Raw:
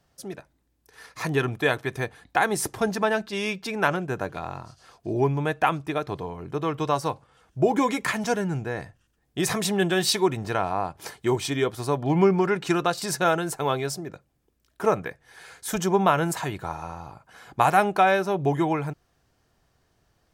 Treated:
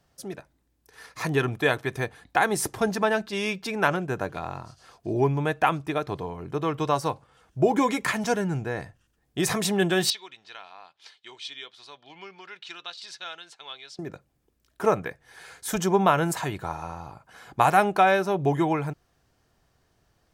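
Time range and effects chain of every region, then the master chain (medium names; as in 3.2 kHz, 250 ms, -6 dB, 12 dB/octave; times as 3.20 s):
10.10–13.99 s: band-pass filter 3.6 kHz, Q 2.5 + distance through air 52 m
whole clip: none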